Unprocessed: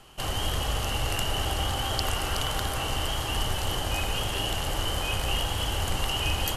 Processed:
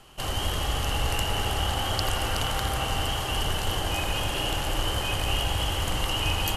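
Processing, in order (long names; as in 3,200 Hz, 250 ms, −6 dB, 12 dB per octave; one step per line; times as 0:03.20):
bucket-brigade delay 85 ms, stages 2,048, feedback 83%, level −9 dB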